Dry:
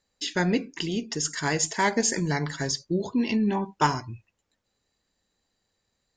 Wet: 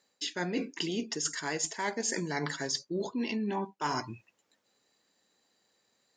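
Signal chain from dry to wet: high-pass 230 Hz 12 dB/octave; reverse; compression 10:1, threshold -34 dBFS, peak gain reduction 17.5 dB; reverse; trim +4.5 dB

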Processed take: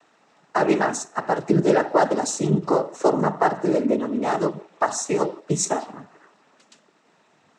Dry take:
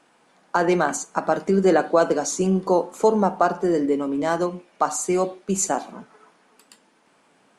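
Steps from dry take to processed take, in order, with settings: band-passed feedback delay 155 ms, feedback 43%, band-pass 1.1 kHz, level -22.5 dB; noise-vocoded speech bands 12; endings held to a fixed fall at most 380 dB/s

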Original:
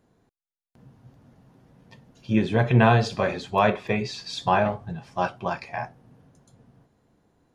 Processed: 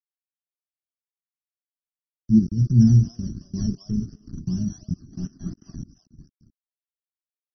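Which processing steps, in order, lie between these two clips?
expander on every frequency bin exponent 1.5; treble shelf 2.3 kHz -2.5 dB; in parallel at -3 dB: compression 12:1, threshold -33 dBFS, peak gain reduction 20 dB; on the sum: reverberation RT60 0.25 s, pre-delay 5 ms, DRR 16.5 dB; bit crusher 5-bit; on a send: repeats whose band climbs or falls 222 ms, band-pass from 850 Hz, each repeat 1.4 oct, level -5 dB; on the sum: decimation with a swept rate 14×, swing 60% 2.8 Hz; 2.39–3.49 s: transient shaper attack -11 dB, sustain +1 dB; 4.13–4.57 s: distance through air 70 m; 5.12–5.75 s: overdrive pedal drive 18 dB, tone 2.4 kHz, clips at -13.5 dBFS; inverse Chebyshev band-stop 480–4000 Hz, stop band 40 dB; trim +7.5 dB; MP3 24 kbps 24 kHz

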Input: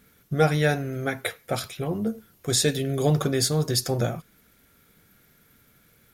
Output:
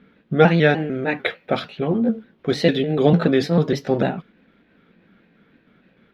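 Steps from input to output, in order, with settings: pitch shift switched off and on +2 st, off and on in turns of 149 ms; FFT filter 120 Hz 0 dB, 190 Hz +14 dB, 780 Hz +9 dB, 3.4 kHz +11 dB, 7.9 kHz -20 dB; tape noise reduction on one side only decoder only; trim -3.5 dB

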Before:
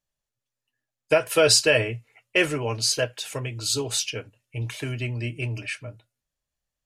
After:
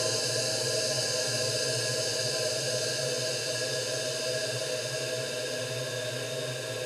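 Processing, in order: flutter echo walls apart 10.2 m, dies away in 0.49 s; Paulstretch 20×, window 1.00 s, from 2.93 s; trim -4.5 dB

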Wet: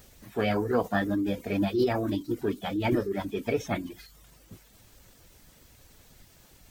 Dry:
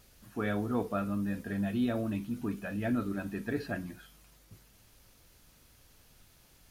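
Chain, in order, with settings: reverb removal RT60 0.54 s; formant shift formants +5 st; trim +6.5 dB

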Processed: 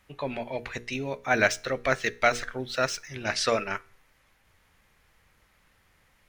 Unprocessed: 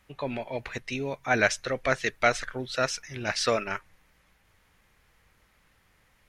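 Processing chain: 0.93–3.09 s: median filter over 3 samples; hum notches 60/120/180/240/300/360/420/480 Hz; feedback comb 78 Hz, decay 0.45 s, harmonics all, mix 30%; trim +3 dB

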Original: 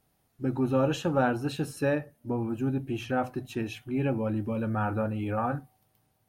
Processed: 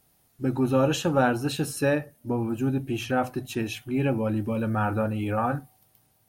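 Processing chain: treble shelf 3.9 kHz +8 dB; trim +3 dB

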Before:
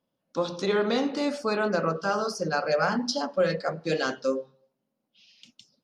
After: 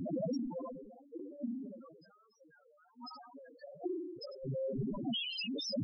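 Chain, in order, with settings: one-bit delta coder 64 kbps, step -28.5 dBFS; harmonic-percussive split harmonic -14 dB; 2.72–3.34 s: bass shelf 470 Hz -11.5 dB; compression 6:1, threshold -33 dBFS, peak gain reduction 9 dB; inverted gate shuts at -29 dBFS, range -37 dB; crackle 430 per s -57 dBFS; distance through air 61 m; Schroeder reverb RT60 1.4 s, combs from 30 ms, DRR 15.5 dB; loudest bins only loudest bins 2; decay stretcher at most 46 dB/s; trim +13.5 dB

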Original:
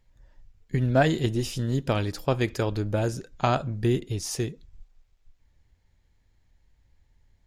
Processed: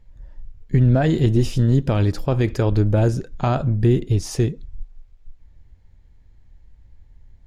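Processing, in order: peak limiter -17.5 dBFS, peak gain reduction 9 dB; tilt EQ -2 dB/octave; trim +5.5 dB

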